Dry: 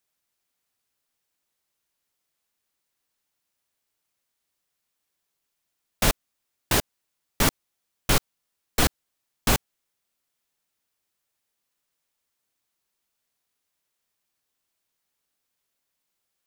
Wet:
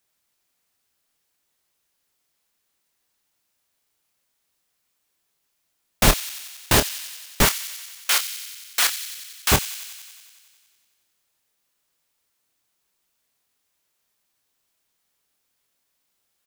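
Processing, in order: 7.45–9.52 HPF 1400 Hz 12 dB/oct; doubler 27 ms -9 dB; thin delay 92 ms, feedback 72%, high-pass 2700 Hz, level -10.5 dB; gain +5 dB

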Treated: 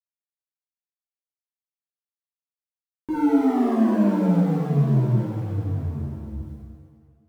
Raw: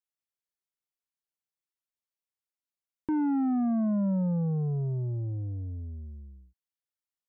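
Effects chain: G.711 law mismatch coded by mu; shimmer reverb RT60 1.5 s, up +7 st, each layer -8 dB, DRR -8 dB; gain -2.5 dB

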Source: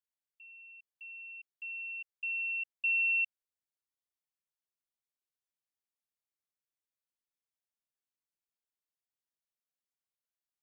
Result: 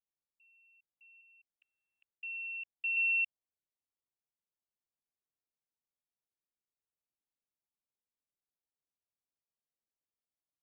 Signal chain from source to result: Wiener smoothing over 25 samples; 1.21–2.97 Bessel low-pass 2600 Hz, order 8

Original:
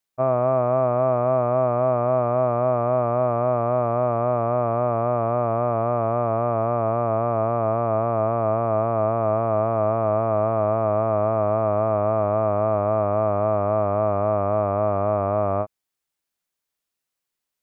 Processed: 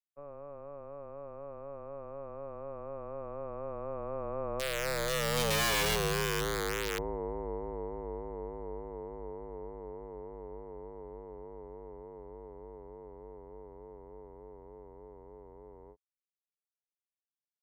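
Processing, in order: Doppler pass-by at 5.69, 32 m/s, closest 13 m; wrapped overs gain 21.5 dB; frequency shift -150 Hz; gain -3 dB

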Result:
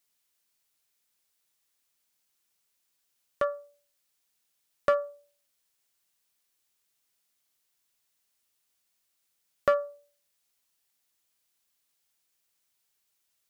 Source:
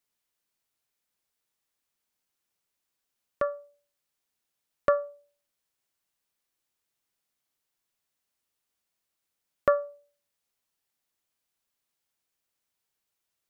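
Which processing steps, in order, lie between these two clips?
high shelf 2100 Hz +7.5 dB; in parallel at -3.5 dB: hard clip -21 dBFS, distortion -8 dB; on the sum: gain -4.5 dB

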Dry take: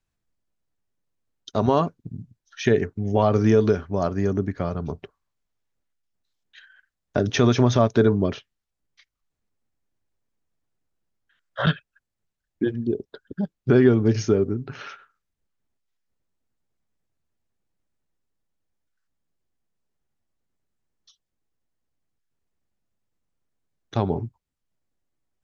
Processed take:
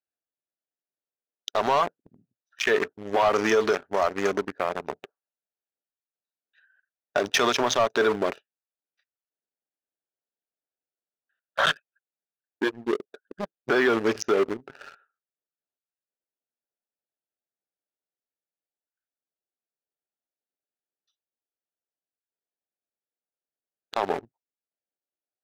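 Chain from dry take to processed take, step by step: Wiener smoothing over 41 samples; HPF 830 Hz 12 dB/oct; sample leveller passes 2; limiter -21 dBFS, peak gain reduction 7.5 dB; gain +7 dB

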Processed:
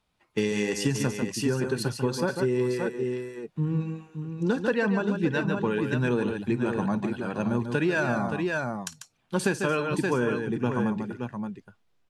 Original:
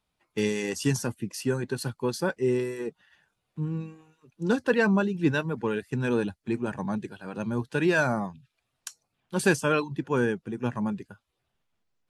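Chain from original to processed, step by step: high shelf 9900 Hz -9 dB; tapped delay 54/144/572 ms -19.5/-8.5/-9 dB; compressor 6:1, threshold -26 dBFS, peak gain reduction 10.5 dB; gain +4.5 dB

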